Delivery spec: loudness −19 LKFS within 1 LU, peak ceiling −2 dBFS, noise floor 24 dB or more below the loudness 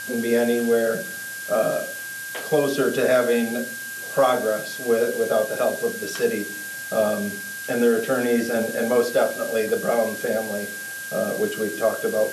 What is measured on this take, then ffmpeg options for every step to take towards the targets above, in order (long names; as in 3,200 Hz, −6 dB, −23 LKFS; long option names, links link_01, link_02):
interfering tone 1,600 Hz; level of the tone −32 dBFS; background noise floor −33 dBFS; target noise floor −47 dBFS; integrated loudness −23.0 LKFS; sample peak −7.0 dBFS; target loudness −19.0 LKFS
→ -af "bandreject=frequency=1600:width=30"
-af "afftdn=noise_reduction=14:noise_floor=-33"
-af "volume=4dB"